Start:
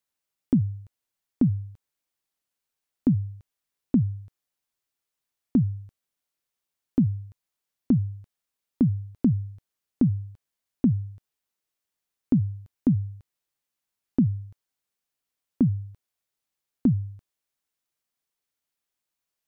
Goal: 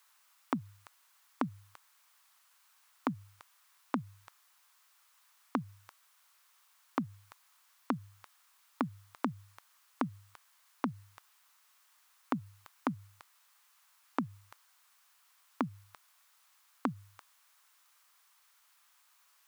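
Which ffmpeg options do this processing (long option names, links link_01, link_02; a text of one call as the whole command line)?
ffmpeg -i in.wav -af "alimiter=limit=-18dB:level=0:latency=1:release=145,highpass=frequency=1100:width_type=q:width=2.4,volume=17dB" out.wav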